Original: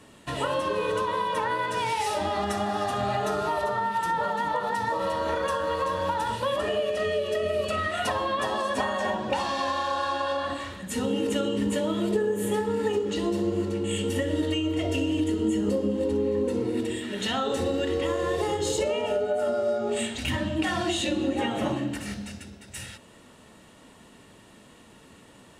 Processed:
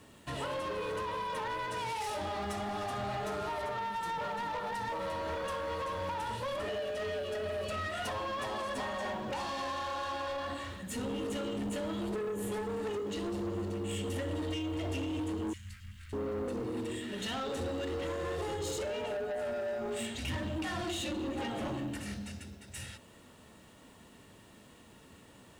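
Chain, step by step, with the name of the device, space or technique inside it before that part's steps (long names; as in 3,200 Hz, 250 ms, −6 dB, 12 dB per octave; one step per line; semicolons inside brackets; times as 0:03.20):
open-reel tape (soft clipping −27.5 dBFS, distortion −11 dB; parametric band 80 Hz +4.5 dB 1.14 octaves; white noise bed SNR 37 dB)
0:15.53–0:16.13: elliptic band-stop filter 120–1,900 Hz, stop band 70 dB
level −5 dB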